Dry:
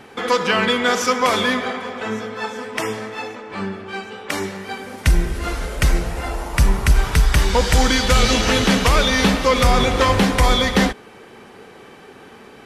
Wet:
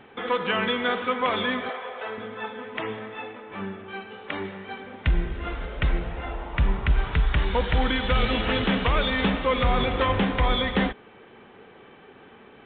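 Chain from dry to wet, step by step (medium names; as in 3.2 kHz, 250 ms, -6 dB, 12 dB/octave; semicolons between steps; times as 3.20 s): 1.69–2.18 s: resonant low shelf 360 Hz -12 dB, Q 1.5; trim -7 dB; µ-law 64 kbps 8 kHz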